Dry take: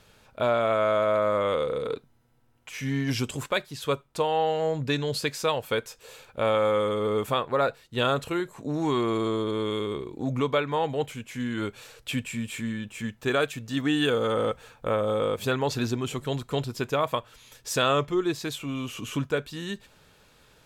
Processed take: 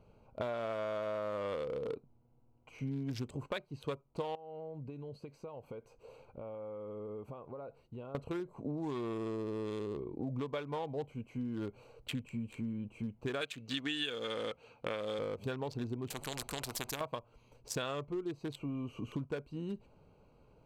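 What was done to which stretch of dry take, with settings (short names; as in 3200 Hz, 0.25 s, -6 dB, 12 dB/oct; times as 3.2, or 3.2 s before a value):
4.35–8.15 compressor 4:1, threshold -41 dBFS
13.41–15.19 weighting filter D
16.1–17.01 spectral compressor 4:1
whole clip: Wiener smoothing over 25 samples; notch 1300 Hz, Q 21; compressor 6:1, threshold -33 dBFS; gain -2 dB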